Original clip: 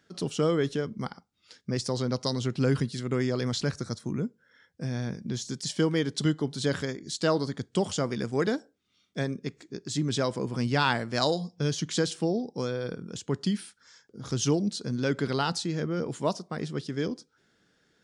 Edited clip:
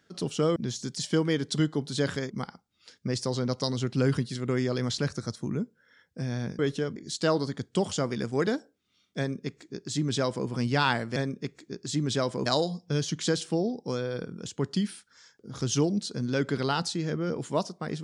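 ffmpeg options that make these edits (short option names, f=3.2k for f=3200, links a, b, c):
-filter_complex "[0:a]asplit=7[a][b][c][d][e][f][g];[a]atrim=end=0.562[h];[b]atrim=start=5.218:end=6.962[i];[c]atrim=start=0.928:end=5.222[j];[d]atrim=start=0.558:end=0.932[k];[e]atrim=start=6.958:end=11.162[l];[f]atrim=start=9.178:end=10.482[m];[g]atrim=start=11.158[n];[h][i]acrossfade=d=0.004:c1=hsin:c2=hsin[o];[o][j]acrossfade=d=0.004:c1=hsin:c2=hsin[p];[p][k]acrossfade=d=0.004:c1=hsin:c2=hsin[q];[q][l]acrossfade=d=0.004:c1=hsin:c2=hsin[r];[r][m]acrossfade=d=0.004:c1=hsin:c2=hsin[s];[s][n]acrossfade=d=0.004:c1=hsin:c2=hsin"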